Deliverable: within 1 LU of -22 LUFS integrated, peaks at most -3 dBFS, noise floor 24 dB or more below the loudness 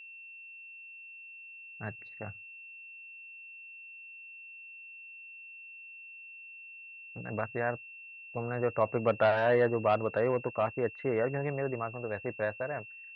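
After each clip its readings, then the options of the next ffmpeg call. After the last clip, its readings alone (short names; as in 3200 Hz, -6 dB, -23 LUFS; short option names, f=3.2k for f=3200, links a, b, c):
steady tone 2700 Hz; tone level -46 dBFS; loudness -32.0 LUFS; peak -15.0 dBFS; loudness target -22.0 LUFS
-> -af "bandreject=f=2.7k:w=30"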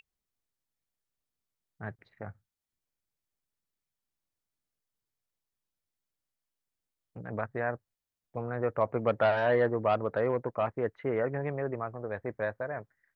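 steady tone none; loudness -31.0 LUFS; peak -15.0 dBFS; loudness target -22.0 LUFS
-> -af "volume=9dB"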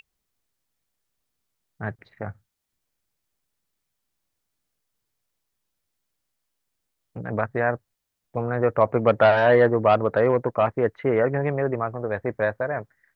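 loudness -22.0 LUFS; peak -6.0 dBFS; noise floor -80 dBFS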